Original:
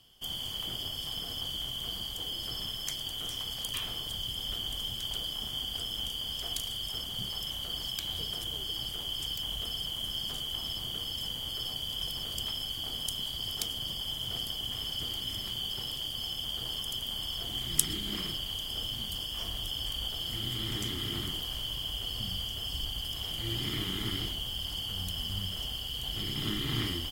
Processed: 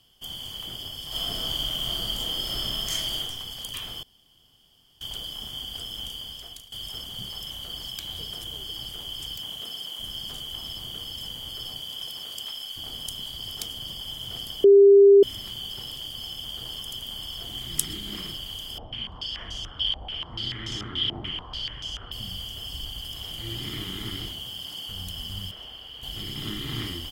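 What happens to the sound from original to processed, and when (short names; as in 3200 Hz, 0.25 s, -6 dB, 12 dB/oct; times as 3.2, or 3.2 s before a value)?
1.07–3.19 reverb throw, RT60 0.88 s, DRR -8 dB
4.03–5.01 room tone
6.13–6.72 fade out, to -16.5 dB
9.39–9.98 HPF 99 Hz -> 330 Hz
11.8–12.75 HPF 210 Hz -> 870 Hz 6 dB/oct
14.64–15.23 bleep 399 Hz -9.5 dBFS
18.78–22.12 stepped low-pass 6.9 Hz 770–6100 Hz
24.31–24.87 HPF 64 Hz -> 240 Hz
25.51–26.03 tone controls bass -12 dB, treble -15 dB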